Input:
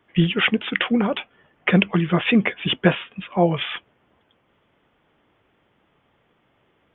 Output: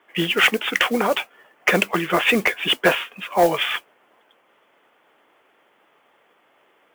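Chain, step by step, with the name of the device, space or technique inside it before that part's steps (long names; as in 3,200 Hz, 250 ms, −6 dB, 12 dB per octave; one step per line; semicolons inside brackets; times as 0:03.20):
carbon microphone (band-pass filter 460–3,400 Hz; soft clipping −14 dBFS, distortion −14 dB; noise that follows the level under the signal 19 dB)
level +7 dB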